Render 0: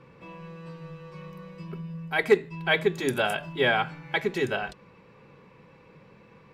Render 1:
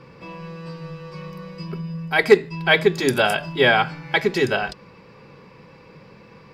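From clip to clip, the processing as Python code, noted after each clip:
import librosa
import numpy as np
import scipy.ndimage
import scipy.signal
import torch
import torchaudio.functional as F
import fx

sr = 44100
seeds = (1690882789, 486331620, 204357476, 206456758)

y = fx.peak_eq(x, sr, hz=4900.0, db=12.0, octaves=0.26)
y = y * librosa.db_to_amplitude(7.0)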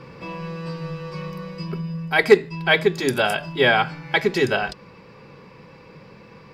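y = fx.rider(x, sr, range_db=5, speed_s=2.0)
y = y * librosa.db_to_amplitude(-1.0)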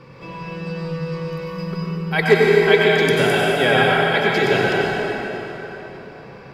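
y = fx.rev_plate(x, sr, seeds[0], rt60_s=4.0, hf_ratio=0.7, predelay_ms=80, drr_db=-5.0)
y = y * librosa.db_to_amplitude(-2.5)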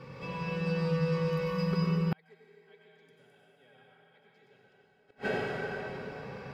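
y = fx.notch_comb(x, sr, f0_hz=340.0)
y = fx.gate_flip(y, sr, shuts_db=-15.0, range_db=-41)
y = y * librosa.db_to_amplitude(-3.0)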